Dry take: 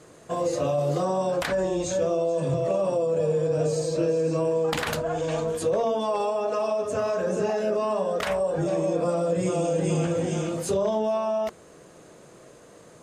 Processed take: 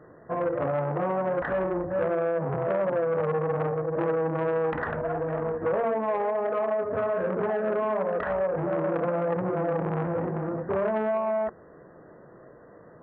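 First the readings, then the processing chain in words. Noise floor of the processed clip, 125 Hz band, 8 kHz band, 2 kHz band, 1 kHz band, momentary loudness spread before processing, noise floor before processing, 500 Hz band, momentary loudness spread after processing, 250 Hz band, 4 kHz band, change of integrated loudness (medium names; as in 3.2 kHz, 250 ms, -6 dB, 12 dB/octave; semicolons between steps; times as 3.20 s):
-51 dBFS, -3.0 dB, under -40 dB, +1.0 dB, +0.5 dB, 3 LU, -50 dBFS, -2.0 dB, 3 LU, -2.5 dB, under -15 dB, -2.0 dB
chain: brick-wall FIR low-pass 2 kHz; transformer saturation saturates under 800 Hz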